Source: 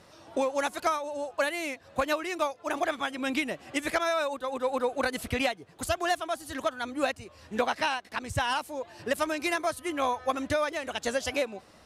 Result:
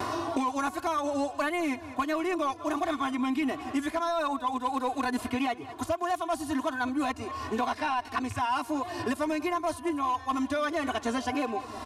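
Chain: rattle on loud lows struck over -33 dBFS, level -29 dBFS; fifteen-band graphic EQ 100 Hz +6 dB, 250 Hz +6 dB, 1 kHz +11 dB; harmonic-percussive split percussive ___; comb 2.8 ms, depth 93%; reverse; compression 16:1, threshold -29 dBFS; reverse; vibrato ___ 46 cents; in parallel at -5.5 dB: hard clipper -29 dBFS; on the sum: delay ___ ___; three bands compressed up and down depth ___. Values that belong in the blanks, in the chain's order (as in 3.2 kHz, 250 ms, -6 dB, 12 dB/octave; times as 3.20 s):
-9 dB, 1.5 Hz, 197 ms, -19.5 dB, 100%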